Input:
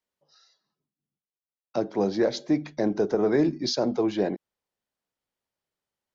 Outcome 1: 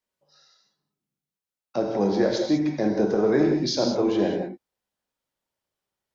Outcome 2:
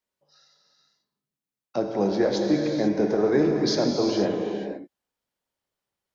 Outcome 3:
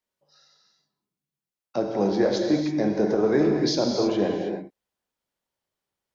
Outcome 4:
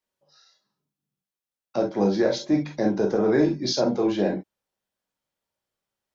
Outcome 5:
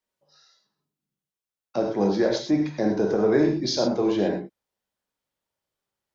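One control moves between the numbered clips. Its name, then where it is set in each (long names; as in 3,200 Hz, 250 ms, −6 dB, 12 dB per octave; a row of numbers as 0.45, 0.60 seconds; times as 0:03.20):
reverb whose tail is shaped and stops, gate: 220, 520, 350, 80, 140 milliseconds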